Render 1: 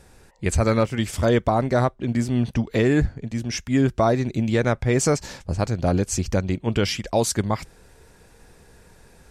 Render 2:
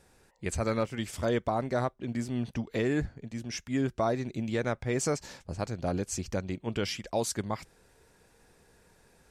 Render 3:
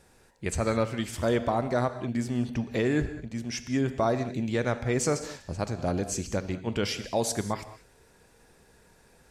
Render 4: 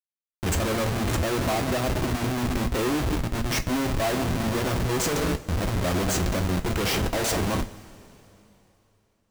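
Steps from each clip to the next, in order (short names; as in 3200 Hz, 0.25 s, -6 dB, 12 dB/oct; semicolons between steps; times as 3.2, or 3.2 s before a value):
low shelf 110 Hz -7.5 dB; gain -8.5 dB
non-linear reverb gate 0.23 s flat, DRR 10.5 dB; gain +2.5 dB
Schmitt trigger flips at -35 dBFS; two-slope reverb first 0.22 s, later 3.2 s, from -22 dB, DRR 6 dB; gain +4.5 dB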